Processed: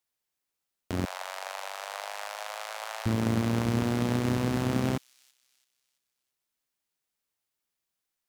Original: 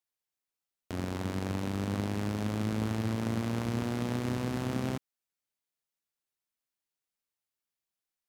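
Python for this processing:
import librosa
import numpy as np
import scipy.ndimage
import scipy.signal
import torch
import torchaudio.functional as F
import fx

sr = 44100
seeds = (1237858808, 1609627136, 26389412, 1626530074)

p1 = fx.steep_highpass(x, sr, hz=600.0, slope=48, at=(1.05, 3.06))
p2 = fx.mod_noise(p1, sr, seeds[0], snr_db=32)
p3 = p2 + fx.echo_wet_highpass(p2, sr, ms=334, feedback_pct=39, hz=4400.0, wet_db=-16.5, dry=0)
y = F.gain(torch.from_numpy(p3), 5.0).numpy()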